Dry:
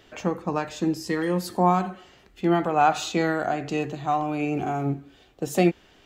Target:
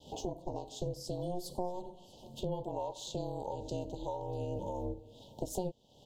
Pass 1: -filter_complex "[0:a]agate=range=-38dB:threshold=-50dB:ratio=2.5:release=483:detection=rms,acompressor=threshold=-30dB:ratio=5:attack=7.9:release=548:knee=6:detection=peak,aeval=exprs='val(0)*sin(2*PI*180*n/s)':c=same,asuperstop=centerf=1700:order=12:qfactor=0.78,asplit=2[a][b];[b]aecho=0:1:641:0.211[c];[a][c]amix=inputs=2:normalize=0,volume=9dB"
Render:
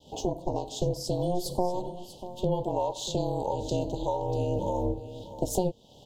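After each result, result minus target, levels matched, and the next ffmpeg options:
compressor: peak gain reduction -9 dB; echo-to-direct +9.5 dB
-filter_complex "[0:a]agate=range=-38dB:threshold=-50dB:ratio=2.5:release=483:detection=rms,acompressor=threshold=-41.5dB:ratio=5:attack=7.9:release=548:knee=6:detection=peak,aeval=exprs='val(0)*sin(2*PI*180*n/s)':c=same,asuperstop=centerf=1700:order=12:qfactor=0.78,asplit=2[a][b];[b]aecho=0:1:641:0.211[c];[a][c]amix=inputs=2:normalize=0,volume=9dB"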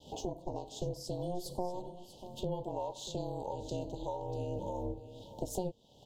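echo-to-direct +9.5 dB
-filter_complex "[0:a]agate=range=-38dB:threshold=-50dB:ratio=2.5:release=483:detection=rms,acompressor=threshold=-41.5dB:ratio=5:attack=7.9:release=548:knee=6:detection=peak,aeval=exprs='val(0)*sin(2*PI*180*n/s)':c=same,asuperstop=centerf=1700:order=12:qfactor=0.78,asplit=2[a][b];[b]aecho=0:1:641:0.0708[c];[a][c]amix=inputs=2:normalize=0,volume=9dB"

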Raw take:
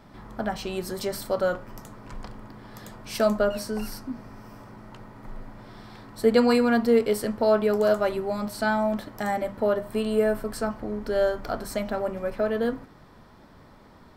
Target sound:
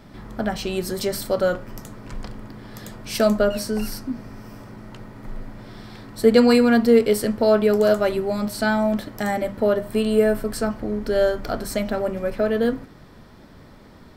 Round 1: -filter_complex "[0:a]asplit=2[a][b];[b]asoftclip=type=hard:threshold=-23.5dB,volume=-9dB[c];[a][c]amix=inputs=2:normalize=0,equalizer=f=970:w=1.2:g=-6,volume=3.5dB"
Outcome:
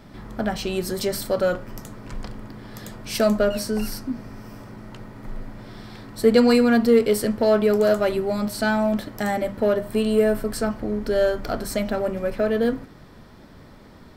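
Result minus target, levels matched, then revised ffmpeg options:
hard clip: distortion +22 dB
-filter_complex "[0:a]asplit=2[a][b];[b]asoftclip=type=hard:threshold=-12dB,volume=-9dB[c];[a][c]amix=inputs=2:normalize=0,equalizer=f=970:w=1.2:g=-6,volume=3.5dB"

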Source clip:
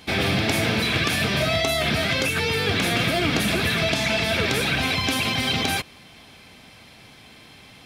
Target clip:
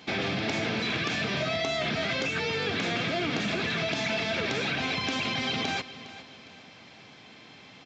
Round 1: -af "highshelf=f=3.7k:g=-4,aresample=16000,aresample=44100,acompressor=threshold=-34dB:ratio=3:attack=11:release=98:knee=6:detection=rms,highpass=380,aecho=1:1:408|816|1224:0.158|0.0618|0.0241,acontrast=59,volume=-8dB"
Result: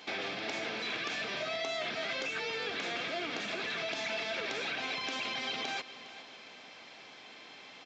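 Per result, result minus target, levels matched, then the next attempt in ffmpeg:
125 Hz band -13.0 dB; compressor: peak gain reduction +6 dB
-af "highshelf=f=3.7k:g=-4,aresample=16000,aresample=44100,acompressor=threshold=-34dB:ratio=3:attack=11:release=98:knee=6:detection=rms,highpass=140,aecho=1:1:408|816|1224:0.158|0.0618|0.0241,acontrast=59,volume=-8dB"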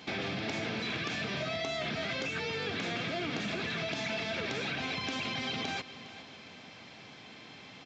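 compressor: peak gain reduction +6 dB
-af "highshelf=f=3.7k:g=-4,aresample=16000,aresample=44100,acompressor=threshold=-25dB:ratio=3:attack=11:release=98:knee=6:detection=rms,highpass=140,aecho=1:1:408|816|1224:0.158|0.0618|0.0241,acontrast=59,volume=-8dB"

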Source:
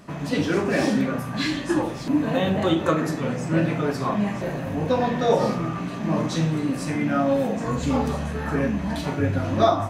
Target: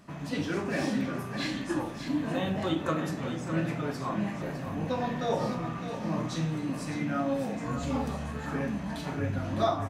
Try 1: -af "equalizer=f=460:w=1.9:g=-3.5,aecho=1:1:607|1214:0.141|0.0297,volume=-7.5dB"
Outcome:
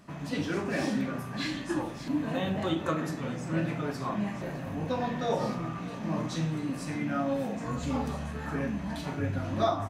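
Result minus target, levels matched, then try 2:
echo-to-direct -7.5 dB
-af "equalizer=f=460:w=1.9:g=-3.5,aecho=1:1:607|1214|1821:0.335|0.0703|0.0148,volume=-7.5dB"

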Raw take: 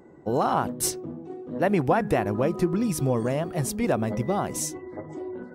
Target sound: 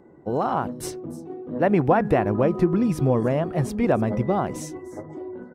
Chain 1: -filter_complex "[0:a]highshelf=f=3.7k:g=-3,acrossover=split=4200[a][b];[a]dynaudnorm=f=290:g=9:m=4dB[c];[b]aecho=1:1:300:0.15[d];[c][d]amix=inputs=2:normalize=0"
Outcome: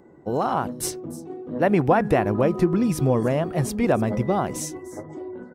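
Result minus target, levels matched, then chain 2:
8000 Hz band +7.0 dB
-filter_complex "[0:a]highshelf=f=3.7k:g=-12,acrossover=split=4200[a][b];[a]dynaudnorm=f=290:g=9:m=4dB[c];[b]aecho=1:1:300:0.15[d];[c][d]amix=inputs=2:normalize=0"

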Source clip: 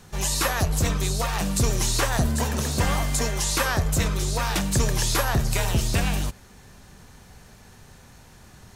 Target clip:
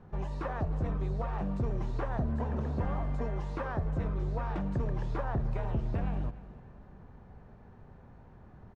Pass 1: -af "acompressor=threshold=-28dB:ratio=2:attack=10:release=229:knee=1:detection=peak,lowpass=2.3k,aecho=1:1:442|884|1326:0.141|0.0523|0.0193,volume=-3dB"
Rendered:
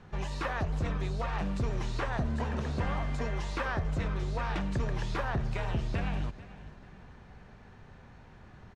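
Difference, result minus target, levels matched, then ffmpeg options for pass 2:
echo 0.144 s late; 2000 Hz band +8.0 dB
-af "acompressor=threshold=-28dB:ratio=2:attack=10:release=229:knee=1:detection=peak,lowpass=1k,aecho=1:1:298|596|894:0.141|0.0523|0.0193,volume=-3dB"

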